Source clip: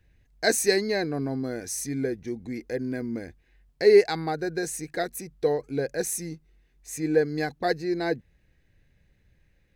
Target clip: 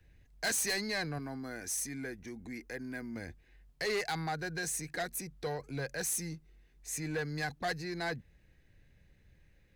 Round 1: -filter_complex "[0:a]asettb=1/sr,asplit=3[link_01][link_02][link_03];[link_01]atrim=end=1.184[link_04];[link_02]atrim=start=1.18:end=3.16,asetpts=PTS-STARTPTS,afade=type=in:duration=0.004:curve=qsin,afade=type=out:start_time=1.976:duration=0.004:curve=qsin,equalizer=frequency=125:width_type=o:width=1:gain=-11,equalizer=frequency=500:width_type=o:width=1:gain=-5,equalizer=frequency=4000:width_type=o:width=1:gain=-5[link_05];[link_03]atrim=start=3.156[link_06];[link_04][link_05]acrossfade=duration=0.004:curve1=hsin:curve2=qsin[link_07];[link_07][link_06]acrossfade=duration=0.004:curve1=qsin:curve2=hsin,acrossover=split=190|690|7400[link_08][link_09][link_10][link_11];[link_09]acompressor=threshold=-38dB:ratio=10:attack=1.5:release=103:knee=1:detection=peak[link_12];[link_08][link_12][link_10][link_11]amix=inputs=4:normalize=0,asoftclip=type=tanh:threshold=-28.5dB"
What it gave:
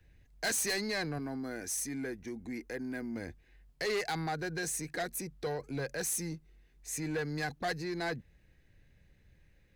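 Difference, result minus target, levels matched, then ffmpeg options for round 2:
downward compressor: peak gain reduction −7.5 dB
-filter_complex "[0:a]asettb=1/sr,asplit=3[link_01][link_02][link_03];[link_01]atrim=end=1.184[link_04];[link_02]atrim=start=1.18:end=3.16,asetpts=PTS-STARTPTS,afade=type=in:duration=0.004:curve=qsin,afade=type=out:start_time=1.976:duration=0.004:curve=qsin,equalizer=frequency=125:width_type=o:width=1:gain=-11,equalizer=frequency=500:width_type=o:width=1:gain=-5,equalizer=frequency=4000:width_type=o:width=1:gain=-5[link_05];[link_03]atrim=start=3.156[link_06];[link_04][link_05]acrossfade=duration=0.004:curve1=hsin:curve2=qsin[link_07];[link_07][link_06]acrossfade=duration=0.004:curve1=qsin:curve2=hsin,acrossover=split=190|690|7400[link_08][link_09][link_10][link_11];[link_09]acompressor=threshold=-46.5dB:ratio=10:attack=1.5:release=103:knee=1:detection=peak[link_12];[link_08][link_12][link_10][link_11]amix=inputs=4:normalize=0,asoftclip=type=tanh:threshold=-28.5dB"

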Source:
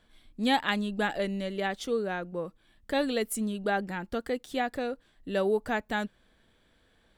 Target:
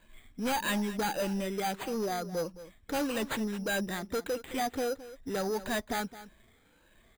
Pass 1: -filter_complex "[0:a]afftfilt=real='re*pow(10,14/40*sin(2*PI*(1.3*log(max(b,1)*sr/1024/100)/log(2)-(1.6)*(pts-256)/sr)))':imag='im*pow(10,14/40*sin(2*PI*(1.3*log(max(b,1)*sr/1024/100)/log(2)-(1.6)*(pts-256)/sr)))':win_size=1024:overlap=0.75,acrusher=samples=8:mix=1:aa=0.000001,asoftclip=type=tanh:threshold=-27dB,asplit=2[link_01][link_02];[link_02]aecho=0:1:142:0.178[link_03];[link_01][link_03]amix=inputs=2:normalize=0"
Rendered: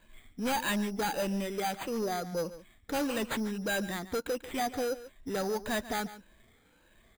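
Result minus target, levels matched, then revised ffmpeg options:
echo 74 ms early
-filter_complex "[0:a]afftfilt=real='re*pow(10,14/40*sin(2*PI*(1.3*log(max(b,1)*sr/1024/100)/log(2)-(1.6)*(pts-256)/sr)))':imag='im*pow(10,14/40*sin(2*PI*(1.3*log(max(b,1)*sr/1024/100)/log(2)-(1.6)*(pts-256)/sr)))':win_size=1024:overlap=0.75,acrusher=samples=8:mix=1:aa=0.000001,asoftclip=type=tanh:threshold=-27dB,asplit=2[link_01][link_02];[link_02]aecho=0:1:216:0.178[link_03];[link_01][link_03]amix=inputs=2:normalize=0"

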